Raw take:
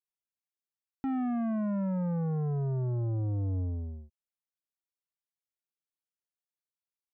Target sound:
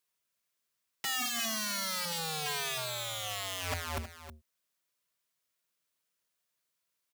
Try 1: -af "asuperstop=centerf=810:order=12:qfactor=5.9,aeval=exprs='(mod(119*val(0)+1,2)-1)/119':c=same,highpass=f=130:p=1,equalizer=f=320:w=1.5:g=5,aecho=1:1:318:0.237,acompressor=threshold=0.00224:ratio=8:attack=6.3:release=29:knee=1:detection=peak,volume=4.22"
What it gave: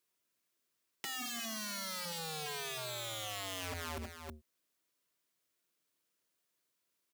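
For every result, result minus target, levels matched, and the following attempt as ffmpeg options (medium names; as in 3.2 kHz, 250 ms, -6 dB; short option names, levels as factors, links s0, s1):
compression: peak gain reduction +10.5 dB; 250 Hz band +3.5 dB
-af "asuperstop=centerf=810:order=12:qfactor=5.9,aeval=exprs='(mod(119*val(0)+1,2)-1)/119':c=same,highpass=f=130:p=1,equalizer=f=320:w=1.5:g=5,aecho=1:1:318:0.237,volume=4.22"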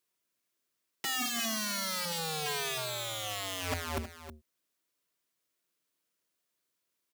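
250 Hz band +4.0 dB
-af "asuperstop=centerf=810:order=12:qfactor=5.9,aeval=exprs='(mod(119*val(0)+1,2)-1)/119':c=same,highpass=f=130:p=1,equalizer=f=320:w=1.5:g=-4,aecho=1:1:318:0.237,volume=4.22"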